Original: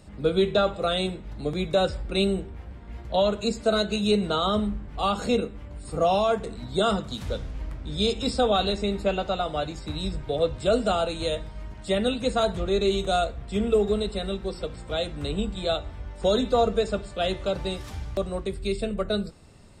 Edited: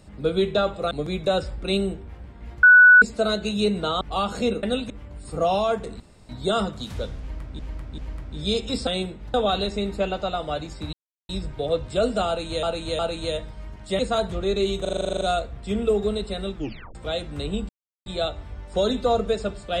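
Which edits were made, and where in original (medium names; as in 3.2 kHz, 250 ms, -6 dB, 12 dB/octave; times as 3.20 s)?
0.91–1.38 s: move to 8.40 s
3.10–3.49 s: bleep 1.48 kHz -7.5 dBFS
4.48–4.88 s: delete
6.60 s: insert room tone 0.29 s
7.51–7.90 s: loop, 3 plays
9.99 s: insert silence 0.36 s
10.97–11.33 s: loop, 3 plays
11.97–12.24 s: move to 5.50 s
13.06 s: stutter 0.04 s, 11 plays
14.39 s: tape stop 0.41 s
15.54 s: insert silence 0.37 s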